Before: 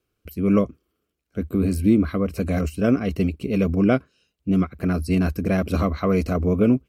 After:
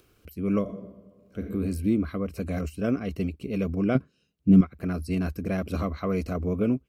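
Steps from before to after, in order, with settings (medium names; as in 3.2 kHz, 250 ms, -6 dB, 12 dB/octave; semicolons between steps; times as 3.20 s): 0.61–1.47 s: reverb throw, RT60 1.1 s, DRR 1.5 dB; 3.95–4.61 s: peaking EQ 170 Hz +12 dB 2.2 oct; upward compressor, threshold -38 dBFS; trim -7 dB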